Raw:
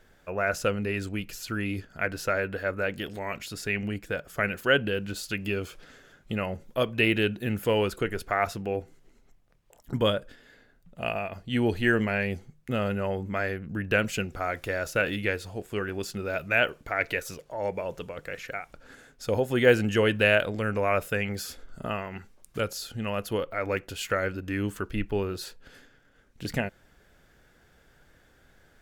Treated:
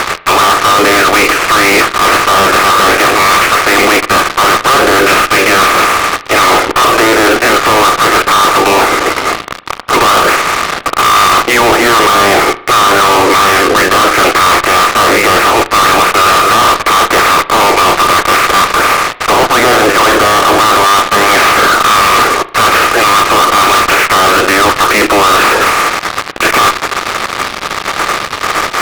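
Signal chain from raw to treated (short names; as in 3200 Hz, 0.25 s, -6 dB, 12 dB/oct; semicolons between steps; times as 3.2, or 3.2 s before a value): spectral limiter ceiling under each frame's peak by 28 dB; treble ducked by the level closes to 1400 Hz, closed at -23.5 dBFS; bell 1200 Hz +14.5 dB 0.22 oct; limiter -16 dBFS, peak gain reduction 9 dB; reverse; compressor 16:1, threshold -36 dBFS, peak gain reduction 15.5 dB; reverse; elliptic band-pass 330–2400 Hz; fuzz box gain 61 dB, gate -59 dBFS; on a send: reverb RT60 0.65 s, pre-delay 35 ms, DRR 15 dB; on the sum: gain +7.5 dB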